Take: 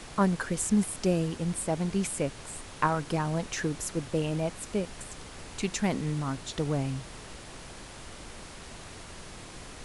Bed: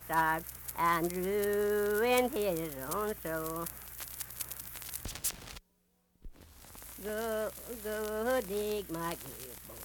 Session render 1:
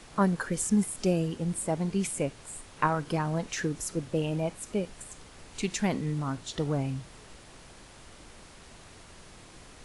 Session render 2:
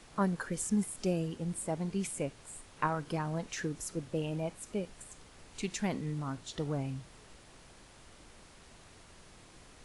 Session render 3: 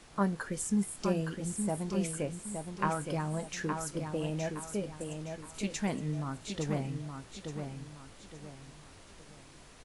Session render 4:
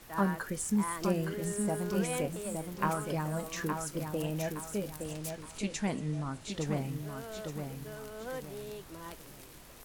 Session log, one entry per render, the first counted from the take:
noise print and reduce 6 dB
gain -5.5 dB
doubler 20 ms -13 dB; feedback echo 0.867 s, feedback 36%, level -6 dB
add bed -9 dB

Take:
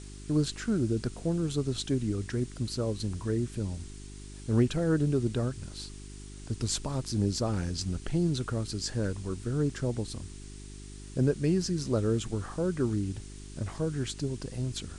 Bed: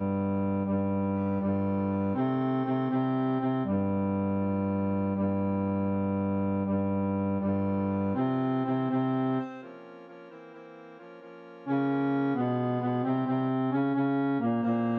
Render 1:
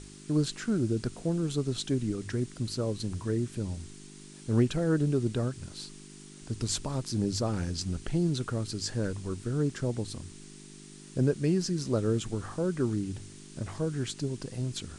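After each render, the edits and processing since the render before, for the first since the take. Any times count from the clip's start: de-hum 50 Hz, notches 2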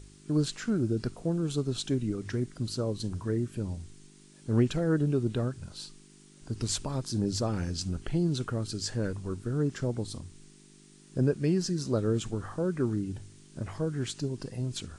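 noise print and reduce 7 dB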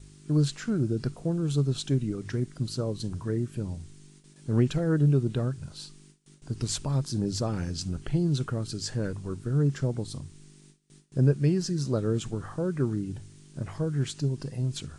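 gate with hold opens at -44 dBFS; bell 140 Hz +9.5 dB 0.24 oct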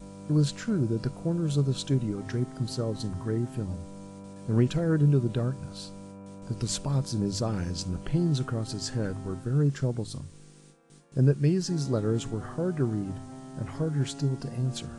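add bed -16 dB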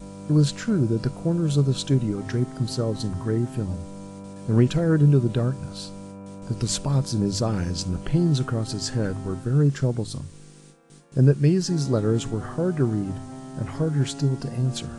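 gain +5 dB

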